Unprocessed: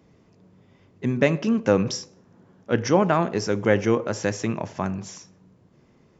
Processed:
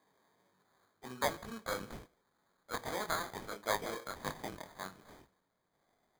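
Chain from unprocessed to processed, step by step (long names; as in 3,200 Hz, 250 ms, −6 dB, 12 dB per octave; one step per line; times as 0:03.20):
chorus effect 2.1 Hz, delay 19.5 ms, depth 4.3 ms
band-pass filter sweep 1,000 Hz → 2,200 Hz, 0:00.38–0:01.93
decimation without filtering 16×
level +1 dB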